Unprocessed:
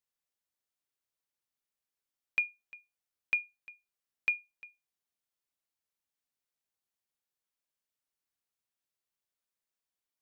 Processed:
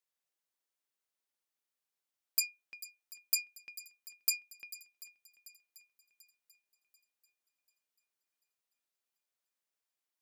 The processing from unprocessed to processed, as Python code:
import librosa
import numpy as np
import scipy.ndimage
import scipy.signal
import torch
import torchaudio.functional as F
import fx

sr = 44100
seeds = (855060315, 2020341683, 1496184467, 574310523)

p1 = fx.tracing_dist(x, sr, depth_ms=0.45)
p2 = scipy.signal.sosfilt(scipy.signal.butter(2, 270.0, 'highpass', fs=sr, output='sos'), p1)
y = p2 + fx.echo_swing(p2, sr, ms=739, ratio=1.5, feedback_pct=42, wet_db=-17.0, dry=0)